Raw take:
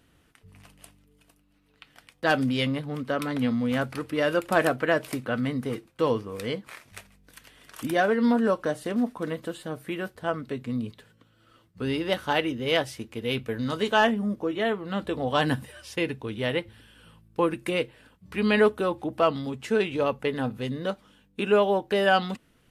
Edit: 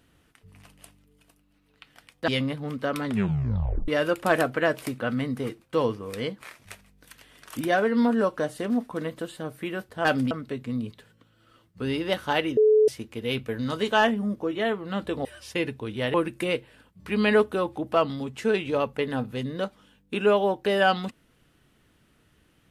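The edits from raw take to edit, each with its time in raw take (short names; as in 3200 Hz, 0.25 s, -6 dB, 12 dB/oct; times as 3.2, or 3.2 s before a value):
2.28–2.54 move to 10.31
3.31 tape stop 0.83 s
12.57–12.88 bleep 430 Hz -14.5 dBFS
15.25–15.67 cut
16.56–17.4 cut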